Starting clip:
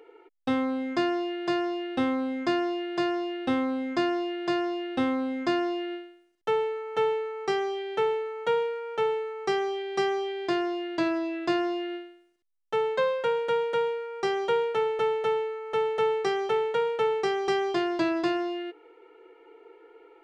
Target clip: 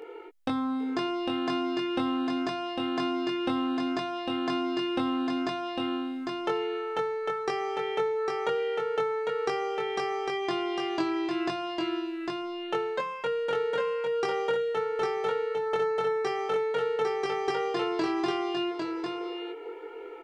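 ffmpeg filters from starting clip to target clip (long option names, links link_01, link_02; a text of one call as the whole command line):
ffmpeg -i in.wav -filter_complex "[0:a]acompressor=threshold=-39dB:ratio=3,asplit=2[link_01][link_02];[link_02]adelay=22,volume=-2.5dB[link_03];[link_01][link_03]amix=inputs=2:normalize=0,aecho=1:1:802:0.631,volume=7dB" out.wav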